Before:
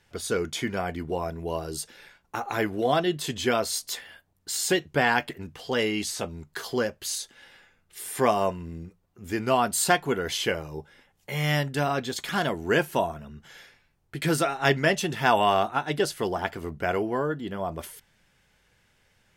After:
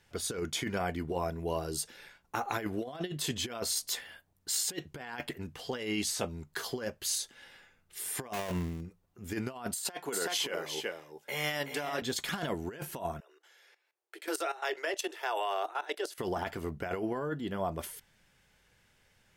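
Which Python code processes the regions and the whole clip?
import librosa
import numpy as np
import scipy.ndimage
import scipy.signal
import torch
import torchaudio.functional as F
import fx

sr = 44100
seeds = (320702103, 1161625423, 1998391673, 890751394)

y = fx.chain(x, sr, fx.dead_time(dead_ms=0.27),
    fx.sustainer(db_per_s=41.0), at=(8.33, 8.81))
y = fx.chain(y, sr, fx.highpass(hz=320.0, slope=12),
    fx.echo_single(ms=374, db=-7.5), at=(9.75, 12.02))
y = fx.chain(y, sr, fx.steep_highpass(hz=330.0, slope=96),
    fx.level_steps(step_db=15), at=(13.2, 16.18))
y = fx.high_shelf(y, sr, hz=6700.0, db=2.5)
y = fx.over_compress(y, sr, threshold_db=-28.0, ratio=-0.5)
y = F.gain(torch.from_numpy(y), -5.0).numpy()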